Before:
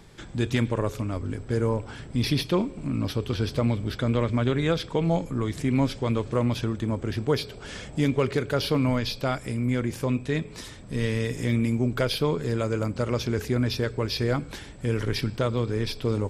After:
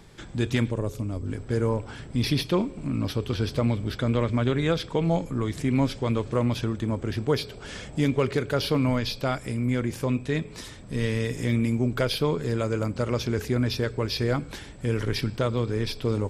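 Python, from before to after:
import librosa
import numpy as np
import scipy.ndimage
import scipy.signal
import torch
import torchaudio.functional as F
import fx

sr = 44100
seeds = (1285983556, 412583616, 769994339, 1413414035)

y = fx.peak_eq(x, sr, hz=1600.0, db=-10.5, octaves=2.4, at=(0.7, 1.26), fade=0.02)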